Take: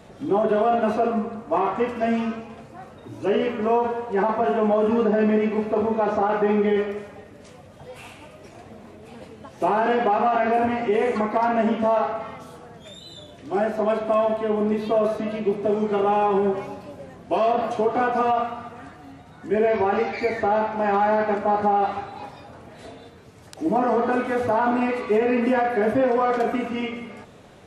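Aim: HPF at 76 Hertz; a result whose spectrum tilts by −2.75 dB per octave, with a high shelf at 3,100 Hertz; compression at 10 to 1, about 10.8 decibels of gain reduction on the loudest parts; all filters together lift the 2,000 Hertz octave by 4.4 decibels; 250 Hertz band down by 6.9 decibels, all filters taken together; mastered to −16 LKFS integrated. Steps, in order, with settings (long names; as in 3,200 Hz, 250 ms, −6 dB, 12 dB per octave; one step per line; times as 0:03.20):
high-pass filter 76 Hz
parametric band 250 Hz −8.5 dB
parametric band 2,000 Hz +4.5 dB
high-shelf EQ 3,100 Hz +4.5 dB
downward compressor 10 to 1, threshold −28 dBFS
level +17 dB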